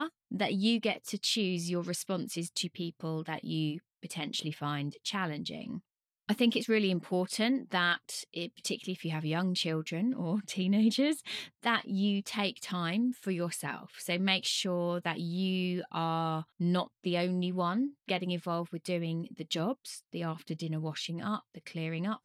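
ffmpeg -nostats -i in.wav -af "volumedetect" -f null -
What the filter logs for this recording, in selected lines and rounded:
mean_volume: -33.1 dB
max_volume: -13.7 dB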